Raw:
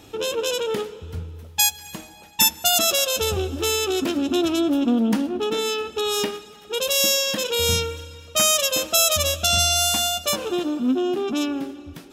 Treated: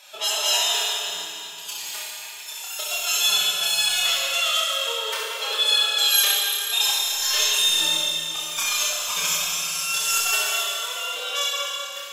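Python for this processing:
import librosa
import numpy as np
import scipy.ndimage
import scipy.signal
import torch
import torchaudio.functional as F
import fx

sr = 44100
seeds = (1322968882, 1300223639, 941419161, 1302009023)

p1 = scipy.signal.sosfilt(scipy.signal.butter(2, 1300.0, 'highpass', fs=sr, output='sos'), x)
p2 = fx.over_compress(p1, sr, threshold_db=-26.0, ratio=-0.5)
p3 = fx.pitch_keep_formants(p2, sr, semitones=11.5)
p4 = p3 + fx.room_early_taps(p3, sr, ms=(28, 68), db=(-4.0, -6.0), dry=0)
y = fx.rev_schroeder(p4, sr, rt60_s=3.0, comb_ms=25, drr_db=-2.0)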